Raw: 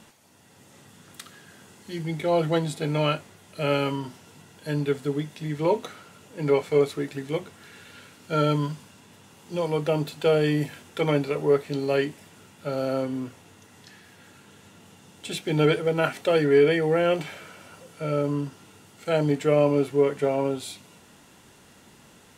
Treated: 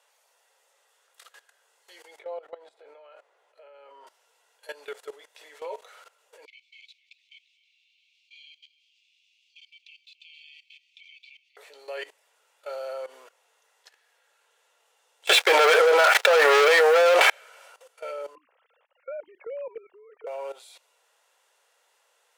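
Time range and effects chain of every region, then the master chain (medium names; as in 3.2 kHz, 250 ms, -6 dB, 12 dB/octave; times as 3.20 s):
2.19–4.07 s: compression 8:1, threshold -28 dBFS + low-pass 1 kHz 6 dB/octave + bass shelf 150 Hz +7 dB
6.45–11.57 s: steep high-pass 2.3 kHz 96 dB/octave + distance through air 220 m + delay 263 ms -10.5 dB
15.27–17.30 s: FFT filter 110 Hz 0 dB, 1.6 kHz +11 dB, 9.3 kHz -3 dB + waveshaping leveller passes 5
18.35–20.27 s: formants replaced by sine waves + treble shelf 2.5 kHz -6 dB + compression 5:1, threshold -27 dBFS
whole clip: elliptic high-pass 490 Hz, stop band 60 dB; level held to a coarse grid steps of 17 dB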